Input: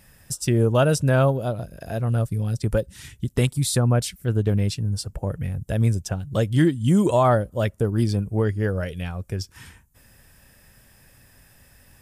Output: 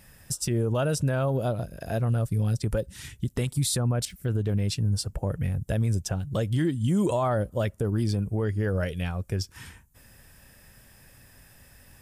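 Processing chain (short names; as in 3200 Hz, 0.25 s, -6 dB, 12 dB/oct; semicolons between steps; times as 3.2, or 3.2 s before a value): 4.05–4.48 de-esser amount 100%; limiter -17 dBFS, peak gain reduction 10 dB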